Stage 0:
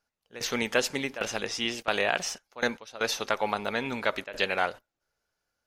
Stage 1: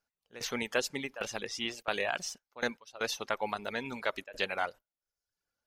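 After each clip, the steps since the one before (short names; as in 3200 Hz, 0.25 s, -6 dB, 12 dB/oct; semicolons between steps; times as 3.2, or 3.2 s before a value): reverb removal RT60 0.71 s; gain -5 dB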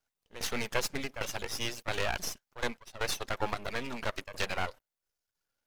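in parallel at +1 dB: limiter -21 dBFS, peak gain reduction 7 dB; on the sum: half-wave rectifier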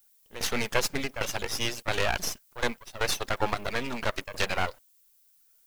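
added noise violet -68 dBFS; gain +5 dB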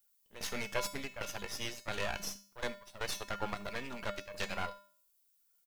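resonator 200 Hz, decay 0.45 s, harmonics odd, mix 80%; echo 77 ms -22.5 dB; gain +2.5 dB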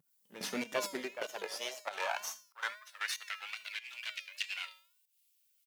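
pump 95 bpm, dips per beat 1, -13 dB, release 0.183 s; wow and flutter 120 cents; high-pass sweep 160 Hz -> 2600 Hz, 0.03–3.56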